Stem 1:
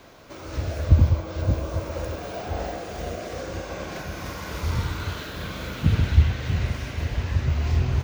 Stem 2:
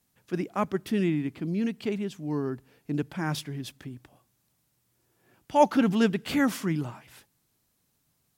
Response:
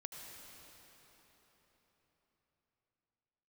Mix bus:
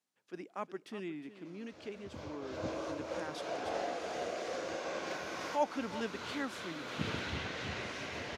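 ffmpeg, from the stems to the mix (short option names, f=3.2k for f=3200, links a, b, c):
-filter_complex "[0:a]adelay=1150,volume=-4.5dB,afade=t=in:st=2.1:d=0.35:silence=0.237137,asplit=2[a][b];[b]volume=-9.5dB[c];[1:a]volume=-11.5dB,asplit=3[d][e][f];[e]volume=-14.5dB[g];[f]apad=whole_len=404998[h];[a][h]sidechaincompress=threshold=-43dB:ratio=8:attack=48:release=282[i];[c][g]amix=inputs=2:normalize=0,aecho=0:1:361:1[j];[i][d][j]amix=inputs=3:normalize=0,highpass=320,lowpass=7.7k"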